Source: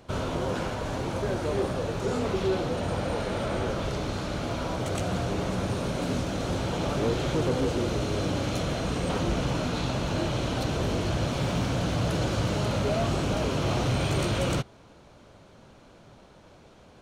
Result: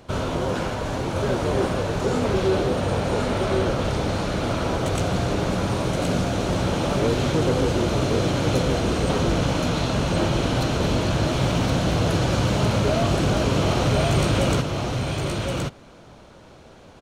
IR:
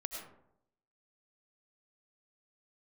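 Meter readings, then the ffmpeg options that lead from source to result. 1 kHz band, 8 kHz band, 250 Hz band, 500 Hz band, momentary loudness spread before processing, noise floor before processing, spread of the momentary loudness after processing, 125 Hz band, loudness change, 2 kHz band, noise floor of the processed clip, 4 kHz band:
+6.0 dB, +6.0 dB, +6.0 dB, +6.0 dB, 4 LU, −53 dBFS, 5 LU, +6.0 dB, +5.5 dB, +6.0 dB, −47 dBFS, +6.0 dB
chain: -af "aecho=1:1:1071:0.631,volume=4.5dB"

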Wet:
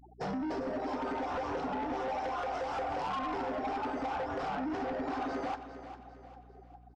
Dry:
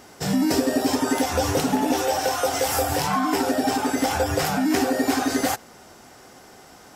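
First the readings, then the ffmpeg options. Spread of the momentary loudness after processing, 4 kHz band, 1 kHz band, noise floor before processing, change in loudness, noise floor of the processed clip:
15 LU, −20.5 dB, −9.0 dB, −48 dBFS, −13.0 dB, −55 dBFS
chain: -af "afftfilt=real='re*gte(hypot(re,im),0.0224)':imag='im*gte(hypot(re,im),0.0224)':win_size=1024:overlap=0.75,lowpass=frequency=4600:width=0.5412,lowpass=frequency=4600:width=1.3066,equalizer=frequency=97:width_type=o:width=2.2:gain=-14,acompressor=threshold=-32dB:ratio=8,highshelf=frequency=1600:width_type=q:width=1.5:gain=-10,asoftclip=type=tanh:threshold=-35dB,aeval=exprs='val(0)+0.000891*(sin(2*PI*60*n/s)+sin(2*PI*2*60*n/s)/2+sin(2*PI*3*60*n/s)/3+sin(2*PI*4*60*n/s)/4+sin(2*PI*5*60*n/s)/5)':channel_layout=same,aecho=1:1:401|802|1203|1604:0.251|0.1|0.0402|0.0161,volume=3.5dB"

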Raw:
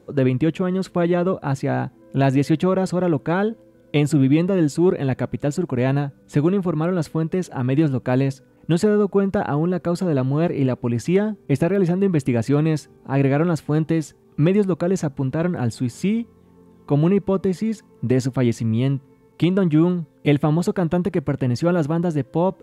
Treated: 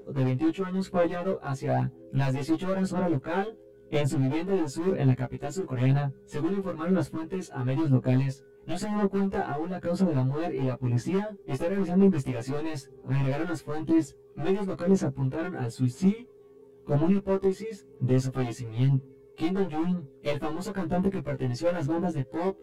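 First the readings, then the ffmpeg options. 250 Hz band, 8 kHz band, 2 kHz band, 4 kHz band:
−8.0 dB, −7.0 dB, −7.5 dB, −7.0 dB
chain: -af "asoftclip=type=hard:threshold=-15.5dB,aphaser=in_gain=1:out_gain=1:delay=2.8:decay=0.52:speed=1:type=sinusoidal,aeval=exprs='val(0)+0.0398*sin(2*PI*410*n/s)':channel_layout=same,afftfilt=real='re*1.73*eq(mod(b,3),0)':imag='im*1.73*eq(mod(b,3),0)':win_size=2048:overlap=0.75,volume=-6dB"

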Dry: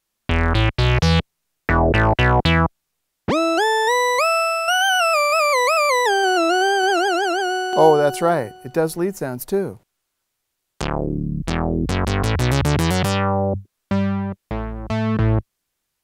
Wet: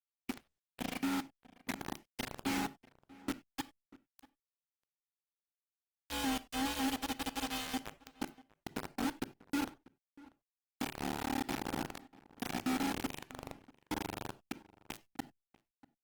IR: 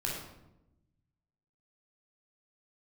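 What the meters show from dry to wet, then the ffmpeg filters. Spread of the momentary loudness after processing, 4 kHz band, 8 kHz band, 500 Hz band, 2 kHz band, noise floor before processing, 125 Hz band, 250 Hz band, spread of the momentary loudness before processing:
13 LU, −19.0 dB, −16.5 dB, −29.0 dB, −23.5 dB, −77 dBFS, −31.0 dB, −15.5 dB, 9 LU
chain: -filter_complex "[0:a]highshelf=frequency=3800:gain=-9,acompressor=threshold=-24dB:ratio=5,aeval=exprs='val(0)*sin(2*PI*110*n/s)':channel_layout=same,asplit=3[link_01][link_02][link_03];[link_01]bandpass=frequency=270:width_type=q:width=8,volume=0dB[link_04];[link_02]bandpass=frequency=2290:width_type=q:width=8,volume=-6dB[link_05];[link_03]bandpass=frequency=3010:width_type=q:width=8,volume=-9dB[link_06];[link_04][link_05][link_06]amix=inputs=3:normalize=0,acrusher=bits=5:mix=0:aa=0.000001,asplit=2[link_07][link_08];[link_08]adelay=641.4,volume=-21dB,highshelf=frequency=4000:gain=-14.4[link_09];[link_07][link_09]amix=inputs=2:normalize=0,asplit=2[link_10][link_11];[1:a]atrim=start_sample=2205,atrim=end_sample=4410[link_12];[link_11][link_12]afir=irnorm=-1:irlink=0,volume=-15.5dB[link_13];[link_10][link_13]amix=inputs=2:normalize=0" -ar 48000 -c:a libopus -b:a 16k

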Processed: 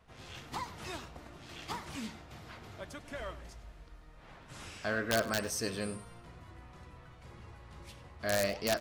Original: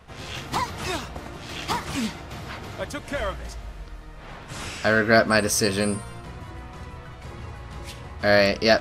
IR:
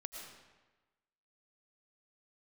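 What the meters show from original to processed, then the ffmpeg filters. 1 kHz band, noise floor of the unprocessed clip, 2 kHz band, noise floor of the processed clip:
−13.0 dB, −42 dBFS, −14.5 dB, −55 dBFS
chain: -filter_complex "[0:a]flanger=delay=2.9:depth=8.9:regen=86:speed=1.6:shape=sinusoidal,aeval=exprs='(mod(3.55*val(0)+1,2)-1)/3.55':channel_layout=same,asplit=2[link_01][link_02];[link_02]adelay=99.13,volume=-16dB,highshelf=frequency=4000:gain=-2.23[link_03];[link_01][link_03]amix=inputs=2:normalize=0,volume=-9dB"

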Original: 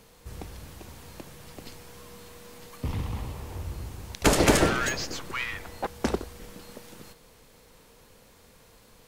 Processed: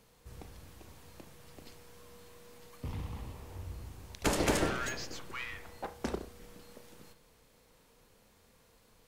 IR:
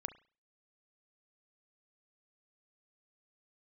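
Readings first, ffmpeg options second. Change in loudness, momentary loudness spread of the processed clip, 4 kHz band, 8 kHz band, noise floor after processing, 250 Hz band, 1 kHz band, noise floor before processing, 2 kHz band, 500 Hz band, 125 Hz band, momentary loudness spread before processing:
−9.0 dB, 24 LU, −9.0 dB, −9.5 dB, −65 dBFS, −9.0 dB, −8.5 dB, −56 dBFS, −9.0 dB, −9.0 dB, −9.0 dB, 25 LU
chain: -filter_complex "[1:a]atrim=start_sample=2205[link_01];[0:a][link_01]afir=irnorm=-1:irlink=0,volume=-6.5dB"

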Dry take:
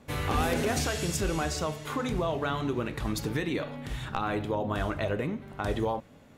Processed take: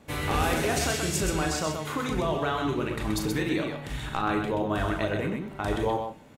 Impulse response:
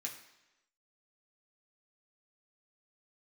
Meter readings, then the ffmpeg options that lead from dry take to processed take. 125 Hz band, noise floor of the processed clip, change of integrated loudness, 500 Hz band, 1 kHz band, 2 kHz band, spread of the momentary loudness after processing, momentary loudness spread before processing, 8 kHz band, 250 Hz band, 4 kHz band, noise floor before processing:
+1.0 dB, −45 dBFS, +2.5 dB, +2.0 dB, +3.0 dB, +3.5 dB, 5 LU, 6 LU, +4.0 dB, +3.0 dB, +3.0 dB, −54 dBFS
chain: -filter_complex "[0:a]aecho=1:1:37.9|128.3:0.447|0.562,asplit=2[link_01][link_02];[1:a]atrim=start_sample=2205,asetrate=48510,aresample=44100[link_03];[link_02][link_03]afir=irnorm=-1:irlink=0,volume=-7.5dB[link_04];[link_01][link_04]amix=inputs=2:normalize=0"

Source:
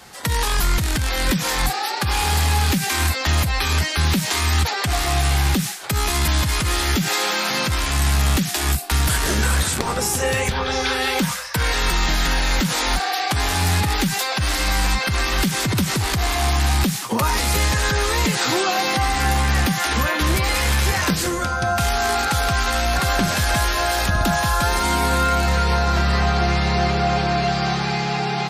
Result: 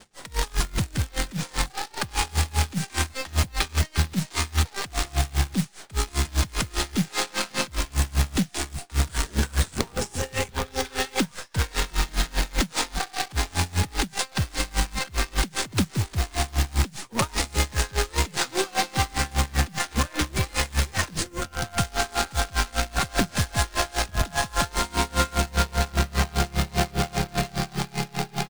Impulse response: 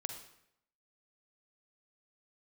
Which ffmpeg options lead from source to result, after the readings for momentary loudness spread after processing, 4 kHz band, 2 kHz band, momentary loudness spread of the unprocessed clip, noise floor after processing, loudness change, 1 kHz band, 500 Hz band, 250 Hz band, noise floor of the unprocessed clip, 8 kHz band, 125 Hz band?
4 LU, −7.0 dB, −8.0 dB, 3 LU, −49 dBFS, −7.0 dB, −8.0 dB, −7.0 dB, −6.0 dB, −25 dBFS, −5.5 dB, −6.0 dB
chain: -filter_complex "[0:a]acrossover=split=490[link_01][link_02];[link_02]acrusher=bits=4:dc=4:mix=0:aa=0.000001[link_03];[link_01][link_03]amix=inputs=2:normalize=0,aresample=22050,aresample=44100,acrusher=bits=3:mode=log:mix=0:aa=0.000001,aeval=exprs='val(0)*pow(10,-27*(0.5-0.5*cos(2*PI*5*n/s))/20)':channel_layout=same"

